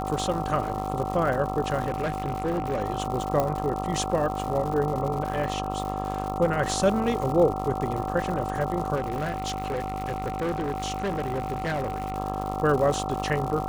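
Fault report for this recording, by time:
mains buzz 50 Hz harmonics 27 −32 dBFS
surface crackle 160 per second −31 dBFS
whistle 760 Hz −31 dBFS
0:01.86–0:02.82: clipping −22.5 dBFS
0:03.40: click −12 dBFS
0:08.95–0:12.18: clipping −24 dBFS

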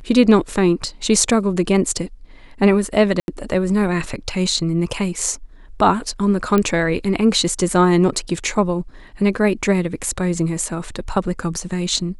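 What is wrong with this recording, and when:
0:03.20–0:03.28: drop-out 81 ms
0:06.58: click −6 dBFS

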